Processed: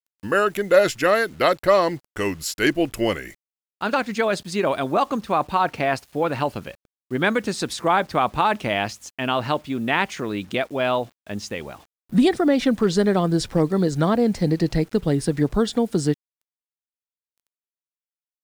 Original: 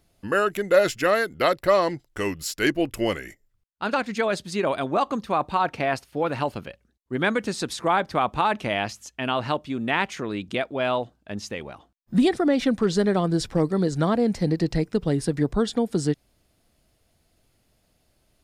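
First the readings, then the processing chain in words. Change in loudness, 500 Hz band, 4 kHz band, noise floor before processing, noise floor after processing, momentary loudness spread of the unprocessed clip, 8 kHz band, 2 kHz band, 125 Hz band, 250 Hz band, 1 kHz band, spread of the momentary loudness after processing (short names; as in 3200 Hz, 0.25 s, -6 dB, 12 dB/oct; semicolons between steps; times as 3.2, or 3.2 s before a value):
+2.5 dB, +2.5 dB, +2.5 dB, -68 dBFS, under -85 dBFS, 10 LU, +2.5 dB, +2.5 dB, +2.5 dB, +2.5 dB, +2.5 dB, 10 LU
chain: bit-crush 9-bit; gain +2.5 dB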